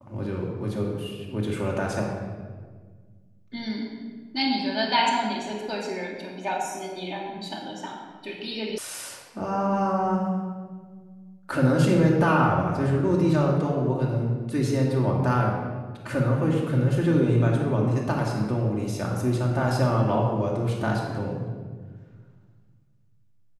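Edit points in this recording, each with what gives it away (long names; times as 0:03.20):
0:08.78: cut off before it has died away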